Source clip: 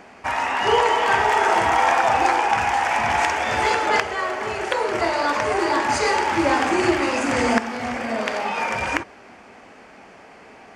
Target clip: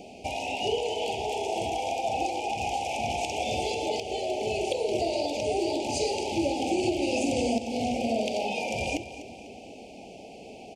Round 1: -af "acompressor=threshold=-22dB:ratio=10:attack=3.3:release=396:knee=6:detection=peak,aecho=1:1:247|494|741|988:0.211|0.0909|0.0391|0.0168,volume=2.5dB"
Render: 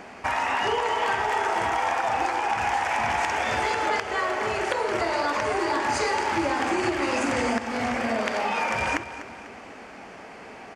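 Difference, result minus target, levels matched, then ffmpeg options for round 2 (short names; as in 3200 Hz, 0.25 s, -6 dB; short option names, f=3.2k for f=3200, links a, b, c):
1000 Hz band +3.0 dB
-af "acompressor=threshold=-22dB:ratio=10:attack=3.3:release=396:knee=6:detection=peak,asuperstop=centerf=1400:order=12:qfactor=0.83,aecho=1:1:247|494|741|988:0.211|0.0909|0.0391|0.0168,volume=2.5dB"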